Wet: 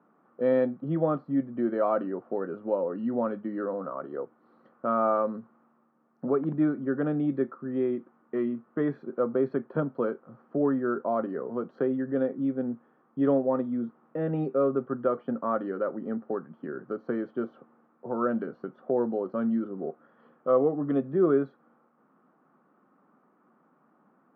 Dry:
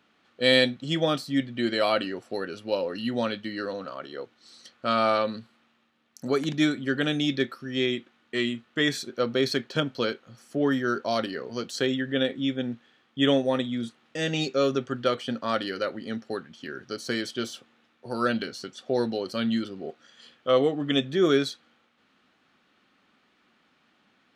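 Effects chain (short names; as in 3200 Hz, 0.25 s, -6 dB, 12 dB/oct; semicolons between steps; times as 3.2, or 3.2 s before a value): Chebyshev band-pass 150–1200 Hz, order 3; in parallel at +1.5 dB: compressor, threshold -35 dBFS, peak gain reduction 17 dB; on the sum: gain -2.5 dB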